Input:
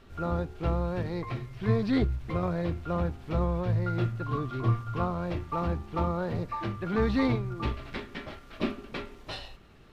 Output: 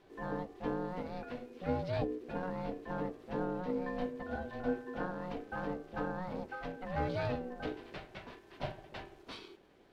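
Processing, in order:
ring modulation 370 Hz
mains-hum notches 50/100 Hz
level −6 dB

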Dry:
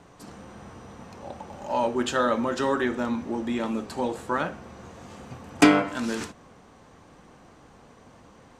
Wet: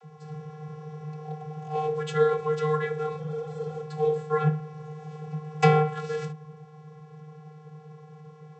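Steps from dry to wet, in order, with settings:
log-companded quantiser 6 bits
channel vocoder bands 32, square 153 Hz
healed spectral selection 0:03.21–0:03.78, 470–3,900 Hz after

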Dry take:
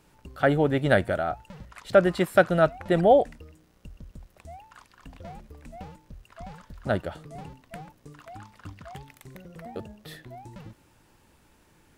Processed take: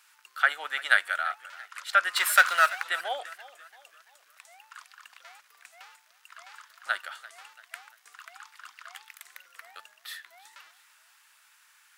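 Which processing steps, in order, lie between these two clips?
0:02.16–0:02.84: power curve on the samples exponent 0.7
Chebyshev high-pass filter 1,300 Hz, order 3
feedback echo with a swinging delay time 338 ms, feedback 45%, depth 80 cents, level −18.5 dB
level +6 dB

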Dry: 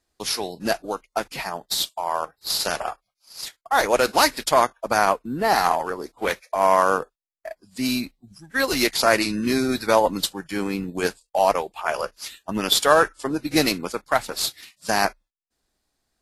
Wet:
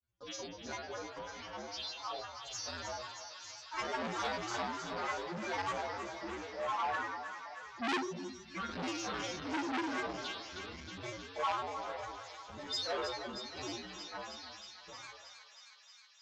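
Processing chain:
fade-out on the ending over 4.76 s
Butterworth low-pass 5,200 Hz 96 dB per octave
low-shelf EQ 270 Hz +7.5 dB
mains-hum notches 60/120/180/240/300/360/420/480/540/600 Hz
tuned comb filter 85 Hz, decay 0.89 s, harmonics odd, mix 100%
granular cloud, grains 20 per second, spray 12 ms, pitch spread up and down by 7 semitones
feedback echo with a high-pass in the loop 315 ms, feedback 82%, high-pass 1,100 Hz, level −7 dB
saturating transformer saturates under 2,300 Hz
level +2.5 dB

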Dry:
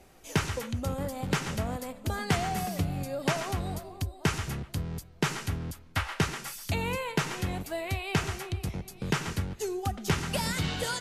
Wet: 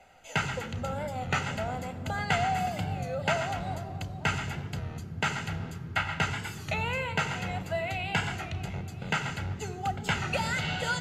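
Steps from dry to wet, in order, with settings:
convolution reverb RT60 3.5 s, pre-delay 3 ms, DRR 14.5 dB
wow of a warped record 33 1/3 rpm, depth 100 cents
level −6 dB

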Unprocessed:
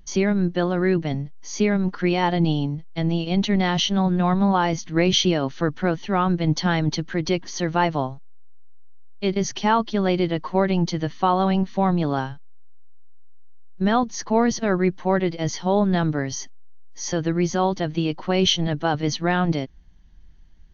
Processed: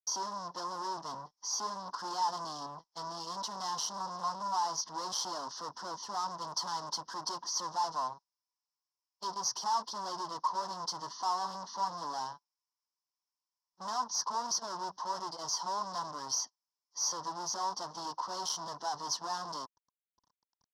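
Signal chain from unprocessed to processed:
fuzz pedal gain 33 dB, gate −41 dBFS
pair of resonant band-passes 2,300 Hz, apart 2.4 octaves
level −7 dB

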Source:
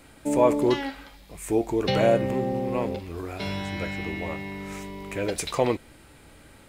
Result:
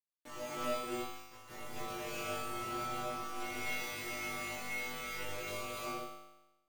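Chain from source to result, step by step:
inverse Chebyshev low-pass filter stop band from 10,000 Hz, stop band 50 dB
hum removal 290 Hz, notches 8
downward compressor 8 to 1, threshold −37 dBFS, peak gain reduction 21.5 dB
transient designer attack −1 dB, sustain −6 dB
bit reduction 6 bits
stiff-string resonator 120 Hz, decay 0.34 s, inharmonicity 0.002
flutter between parallel walls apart 3.4 metres, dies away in 1 s
reverb whose tail is shaped and stops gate 330 ms rising, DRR −7 dB
level −3 dB

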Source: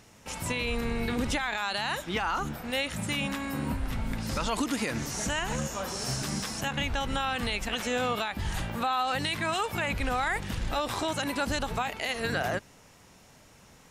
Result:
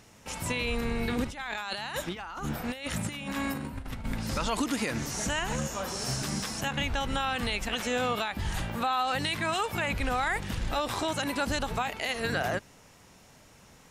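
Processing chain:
0:01.24–0:04.06: compressor whose output falls as the input rises −34 dBFS, ratio −0.5

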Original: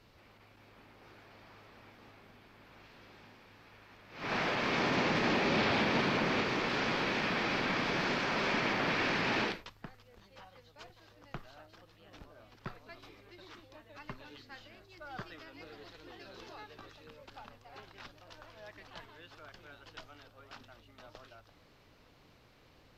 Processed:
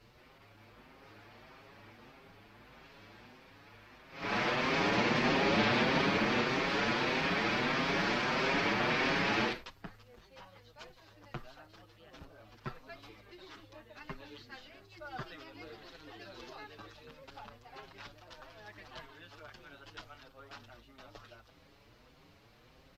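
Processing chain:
barber-pole flanger 6.5 ms +1.6 Hz
level +4 dB

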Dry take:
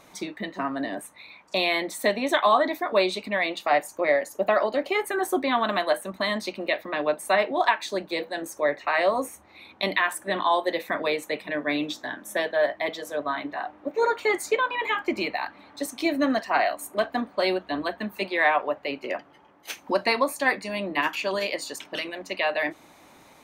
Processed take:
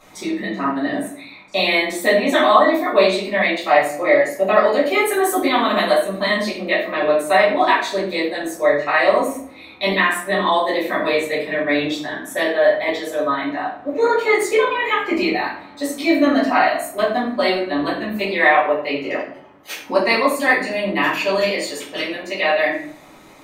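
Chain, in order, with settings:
0:04.61–0:05.94: high-shelf EQ 6,200 Hz +9 dB
rectangular room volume 74 cubic metres, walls mixed, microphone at 2.1 metres
level −2.5 dB

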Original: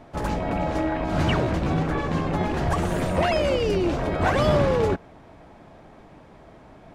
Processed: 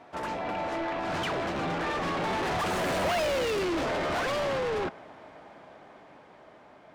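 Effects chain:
source passing by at 0:03.15, 15 m/s, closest 3.4 metres
mid-hump overdrive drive 38 dB, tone 3,800 Hz, clips at −14 dBFS
level −8 dB

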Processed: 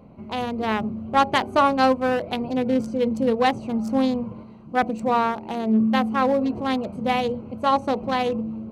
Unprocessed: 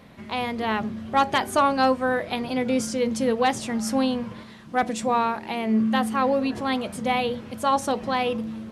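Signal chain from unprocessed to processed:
adaptive Wiener filter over 25 samples
level +2.5 dB

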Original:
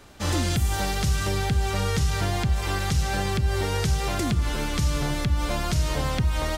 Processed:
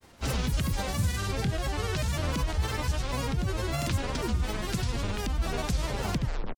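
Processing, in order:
turntable brake at the end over 0.42 s
granular cloud, pitch spread up and down by 7 semitones
level −3.5 dB

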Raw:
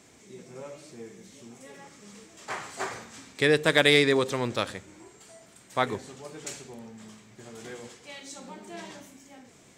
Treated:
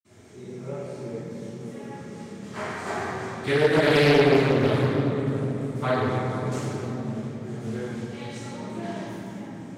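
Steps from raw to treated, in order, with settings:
convolution reverb RT60 3.5 s, pre-delay 46 ms
in parallel at +0.5 dB: downward compressor, threshold −31 dBFS, peak gain reduction 15 dB
on the sum: highs frequency-modulated by the lows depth 0.49 ms

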